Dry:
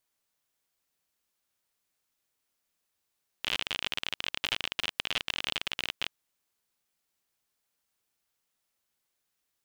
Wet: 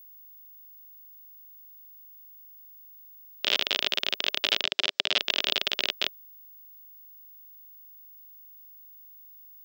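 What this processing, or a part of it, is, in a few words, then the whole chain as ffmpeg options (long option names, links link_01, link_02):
old television with a line whistle: -filter_complex "[0:a]highpass=frequency=220:width=0.5412,highpass=frequency=220:width=1.3066,equalizer=frequency=400:width_type=q:width=4:gain=7,equalizer=frequency=600:width_type=q:width=4:gain=8,equalizer=frequency=930:width_type=q:width=4:gain=-4,equalizer=frequency=3600:width_type=q:width=4:gain=6,equalizer=frequency=5100:width_type=q:width=4:gain=7,lowpass=frequency=7400:width=0.5412,lowpass=frequency=7400:width=1.3066,aeval=exprs='val(0)+0.00282*sin(2*PI*15625*n/s)':channel_layout=same,asettb=1/sr,asplit=3[link_01][link_02][link_03];[link_01]atrim=end=4.634[link_04];[link_02]atrim=start=4.63:end=5.18,asetpts=PTS-STARTPTS,afade=type=in:duration=0.004:curve=qsin,afade=type=out:start_time=0.546:duration=0.004:curve=qsin,lowpass=frequency=8800:width=0.5412,lowpass=frequency=8800:width=1.3066[link_05];[link_03]atrim=start=5.176[link_06];[link_04][link_05]acrossfade=duration=0.004:curve1=hsin:curve2=qsin[link_07];[link_07][link_06]acrossfade=duration=0.004:curve1=qsin:curve2=hsin,volume=3.5dB"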